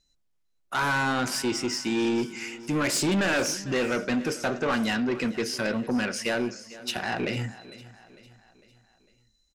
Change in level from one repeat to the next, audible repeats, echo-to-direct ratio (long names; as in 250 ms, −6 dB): −6.0 dB, 3, −17.0 dB